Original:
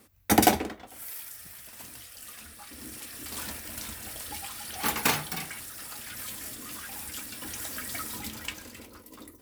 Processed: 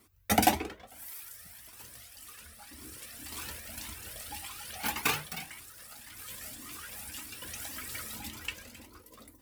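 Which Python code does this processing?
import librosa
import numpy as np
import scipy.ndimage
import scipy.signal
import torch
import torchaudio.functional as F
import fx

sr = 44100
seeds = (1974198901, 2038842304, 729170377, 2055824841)

y = fx.law_mismatch(x, sr, coded='A', at=(4.78, 6.3))
y = fx.dynamic_eq(y, sr, hz=2600.0, q=2.7, threshold_db=-51.0, ratio=4.0, max_db=4)
y = fx.comb_cascade(y, sr, direction='rising', hz=1.8)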